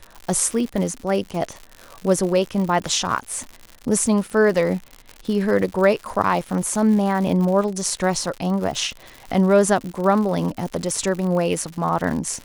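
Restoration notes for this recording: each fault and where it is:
surface crackle 130 per second −27 dBFS

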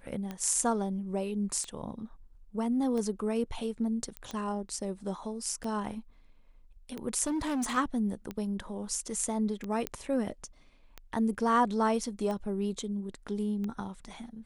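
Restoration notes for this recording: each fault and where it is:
scratch tick 45 rpm −24 dBFS
0:04.17: click −23 dBFS
0:07.27–0:07.78: clipping −28 dBFS
0:09.87: click −15 dBFS

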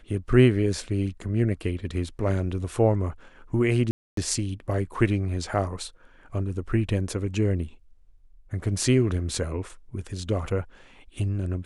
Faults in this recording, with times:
0:03.91–0:04.17: drop-out 263 ms

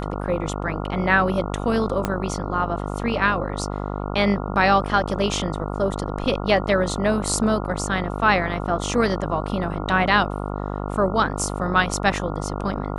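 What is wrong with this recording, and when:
mains buzz 50 Hz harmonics 28 −28 dBFS
0:02.05: click −8 dBFS

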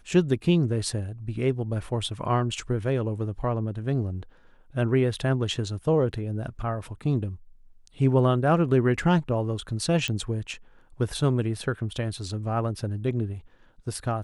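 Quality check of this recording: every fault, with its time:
0:10.08: click −14 dBFS

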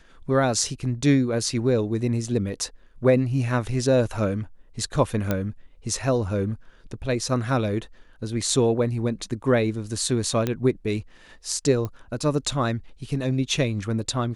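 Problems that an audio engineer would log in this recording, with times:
0:05.31: click −10 dBFS
0:10.47: click −11 dBFS
0:11.85: click −18 dBFS

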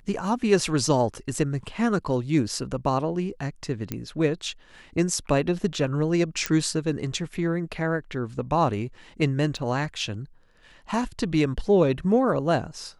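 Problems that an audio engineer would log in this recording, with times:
0:03.92: click −14 dBFS
0:06.46: click −8 dBFS
0:09.57: drop-out 3.9 ms

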